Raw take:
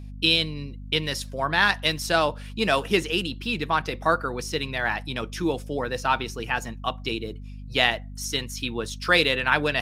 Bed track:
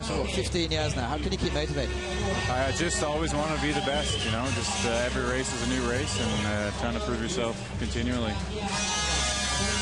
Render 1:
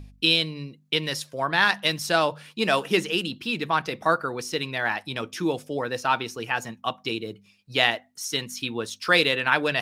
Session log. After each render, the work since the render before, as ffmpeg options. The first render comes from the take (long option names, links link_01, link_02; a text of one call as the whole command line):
ffmpeg -i in.wav -af "bandreject=frequency=50:width_type=h:width=4,bandreject=frequency=100:width_type=h:width=4,bandreject=frequency=150:width_type=h:width=4,bandreject=frequency=200:width_type=h:width=4,bandreject=frequency=250:width_type=h:width=4" out.wav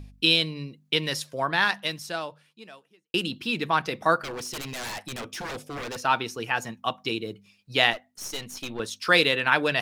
ffmpeg -i in.wav -filter_complex "[0:a]asettb=1/sr,asplit=3[link_01][link_02][link_03];[link_01]atrim=end=4.194[link_04];[link_02]atrim=start=4.19:end=6.03,asetpts=PTS-STARTPTS,afade=type=in:duration=0.004:curve=qsin,afade=type=out:start_time=1.836:duration=0.004:curve=qsin,aeval=exprs='0.0355*(abs(mod(val(0)/0.0355+3,4)-2)-1)':channel_layout=same[link_05];[link_03]atrim=start=6.026[link_06];[link_04][link_05]acrossfade=duration=0.004:curve1=hsin:curve2=qsin[link_07];[link_07][link_06]acrossfade=duration=0.004:curve1=qsin:curve2=hsin,asettb=1/sr,asplit=3[link_08][link_09][link_10];[link_08]atrim=end=7.934[link_11];[link_09]atrim=start=7.93:end=8.8,asetpts=PTS-STARTPTS,afade=type=in:duration=0.004:curve=qsin,afade=type=out:start_time=0.866:duration=0.004:curve=qsin,aeval=exprs='(tanh(25.1*val(0)+0.65)-tanh(0.65))/25.1':channel_layout=same[link_12];[link_10]atrim=start=8.796[link_13];[link_11][link_12]acrossfade=duration=0.004:curve1=hsin:curve2=qsin[link_14];[link_14][link_13]acrossfade=duration=0.004:curve1=qsin:curve2=hsin,asplit=2[link_15][link_16];[link_15]atrim=end=3.14,asetpts=PTS-STARTPTS,afade=type=out:start_time=1.39:duration=1.75:curve=qua[link_17];[link_16]atrim=start=3.14,asetpts=PTS-STARTPTS,afade=type=in:duration=0.004:curve=hsin[link_18];[link_17][link_18]concat=n=2:v=0:a=1" out.wav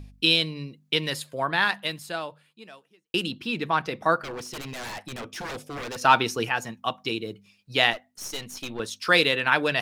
ffmpeg -i in.wav -filter_complex "[0:a]asettb=1/sr,asplit=3[link_01][link_02][link_03];[link_01]atrim=end=1.104[link_04];[link_02]atrim=start=1.1:end=2.67,asetpts=PTS-STARTPTS,afade=type=in:duration=0.004:curve=qsin,afade=type=out:start_time=1.566:duration=0.004:curve=qsin,equalizer=frequency=5700:width=6.5:gain=-14.5[link_05];[link_03]atrim=start=2.666[link_06];[link_04][link_05]acrossfade=duration=0.004:curve1=hsin:curve2=qsin[link_07];[link_07][link_06]acrossfade=duration=0.004:curve1=qsin:curve2=hsin,asettb=1/sr,asplit=3[link_08][link_09][link_10];[link_08]atrim=end=3.324[link_11];[link_09]atrim=start=3.32:end=5.36,asetpts=PTS-STARTPTS,afade=type=in:duration=0.004:curve=qsin,afade=type=out:start_time=2.036:duration=0.004:curve=qsin,highshelf=frequency=3500:gain=-5.5[link_12];[link_10]atrim=start=5.356[link_13];[link_11][link_12]acrossfade=duration=0.004:curve1=hsin:curve2=qsin[link_14];[link_14][link_13]acrossfade=duration=0.004:curve1=qsin:curve2=hsin,asettb=1/sr,asplit=3[link_15][link_16][link_17];[link_15]atrim=end=6.014[link_18];[link_16]atrim=start=6.01:end=6.49,asetpts=PTS-STARTPTS,afade=type=in:duration=0.004:curve=qsin,afade=type=out:start_time=0.476:duration=0.004:curve=qsin,acontrast=52[link_19];[link_17]atrim=start=6.486[link_20];[link_18][link_19]acrossfade=duration=0.004:curve1=hsin:curve2=qsin[link_21];[link_21][link_20]acrossfade=duration=0.004:curve1=qsin:curve2=hsin" out.wav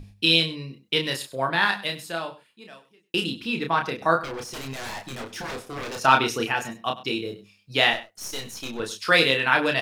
ffmpeg -i in.wav -filter_complex "[0:a]asplit=2[link_01][link_02];[link_02]adelay=30,volume=-4.5dB[link_03];[link_01][link_03]amix=inputs=2:normalize=0,aecho=1:1:98:0.15" out.wav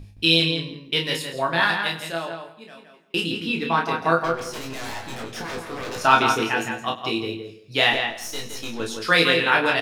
ffmpeg -i in.wav -filter_complex "[0:a]asplit=2[link_01][link_02];[link_02]adelay=18,volume=-5.5dB[link_03];[link_01][link_03]amix=inputs=2:normalize=0,asplit=2[link_04][link_05];[link_05]adelay=167,lowpass=frequency=3500:poles=1,volume=-5.5dB,asplit=2[link_06][link_07];[link_07]adelay=167,lowpass=frequency=3500:poles=1,volume=0.18,asplit=2[link_08][link_09];[link_09]adelay=167,lowpass=frequency=3500:poles=1,volume=0.18[link_10];[link_04][link_06][link_08][link_10]amix=inputs=4:normalize=0" out.wav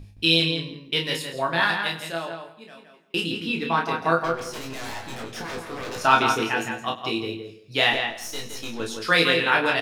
ffmpeg -i in.wav -af "volume=-1.5dB" out.wav